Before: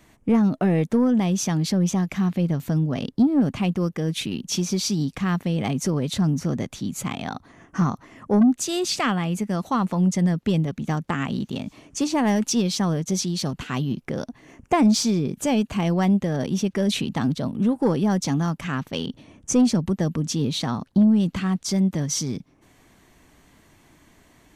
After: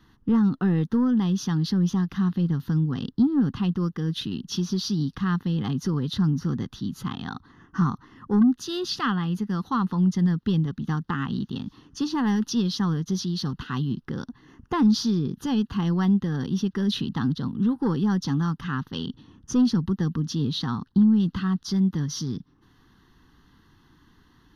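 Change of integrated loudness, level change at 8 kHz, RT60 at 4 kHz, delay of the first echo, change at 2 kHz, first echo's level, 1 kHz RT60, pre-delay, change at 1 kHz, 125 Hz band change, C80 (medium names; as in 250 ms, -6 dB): -2.0 dB, -10.5 dB, no reverb, no echo, -4.0 dB, no echo, no reverb, no reverb, -4.0 dB, -1.0 dB, no reverb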